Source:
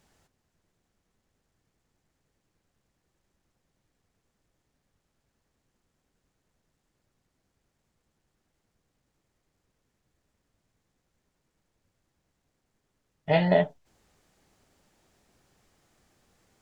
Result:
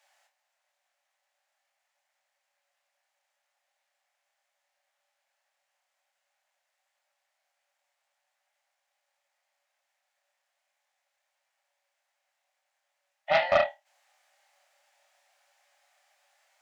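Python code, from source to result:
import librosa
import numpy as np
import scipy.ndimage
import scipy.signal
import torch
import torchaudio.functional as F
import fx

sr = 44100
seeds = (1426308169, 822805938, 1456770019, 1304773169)

y = scipy.signal.sosfilt(scipy.signal.cheby1(6, 6, 550.0, 'highpass', fs=sr, output='sos'), x)
y = fx.room_flutter(y, sr, wall_m=4.5, rt60_s=0.23)
y = fx.doppler_dist(y, sr, depth_ms=0.21)
y = y * librosa.db_to_amplitude(3.5)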